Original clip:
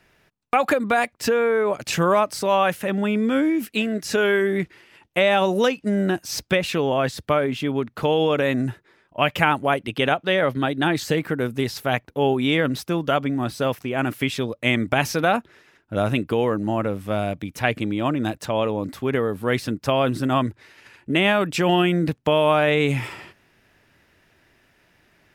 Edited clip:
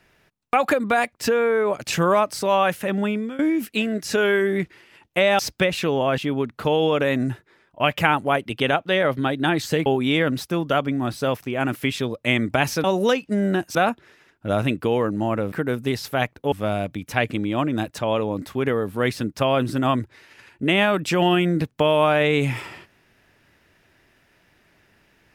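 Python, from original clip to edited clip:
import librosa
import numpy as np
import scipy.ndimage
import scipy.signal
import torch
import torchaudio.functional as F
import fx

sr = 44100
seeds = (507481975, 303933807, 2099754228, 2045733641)

y = fx.edit(x, sr, fx.fade_out_to(start_s=3.04, length_s=0.35, floor_db=-20.5),
    fx.move(start_s=5.39, length_s=0.91, to_s=15.22),
    fx.cut(start_s=7.09, length_s=0.47),
    fx.move(start_s=11.24, length_s=1.0, to_s=16.99), tone=tone)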